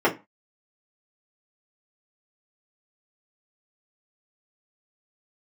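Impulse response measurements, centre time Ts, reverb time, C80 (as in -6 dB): 13 ms, not exponential, 23.5 dB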